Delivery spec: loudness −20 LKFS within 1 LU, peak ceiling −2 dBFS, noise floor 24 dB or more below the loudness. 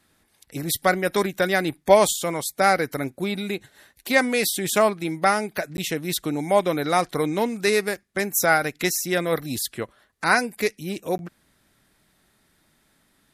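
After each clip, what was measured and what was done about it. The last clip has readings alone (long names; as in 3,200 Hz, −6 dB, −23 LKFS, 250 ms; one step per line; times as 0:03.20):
number of dropouts 2; longest dropout 11 ms; integrated loudness −23.0 LKFS; sample peak −2.0 dBFS; target loudness −20.0 LKFS
→ repair the gap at 0:05.77/0:11.18, 11 ms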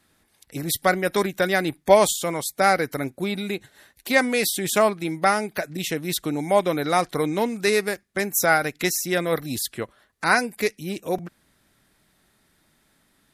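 number of dropouts 0; integrated loudness −23.0 LKFS; sample peak −2.0 dBFS; target loudness −20.0 LKFS
→ level +3 dB
brickwall limiter −2 dBFS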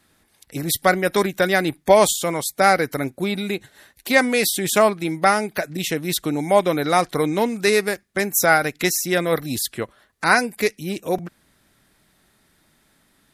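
integrated loudness −20.0 LKFS; sample peak −2.0 dBFS; background noise floor −62 dBFS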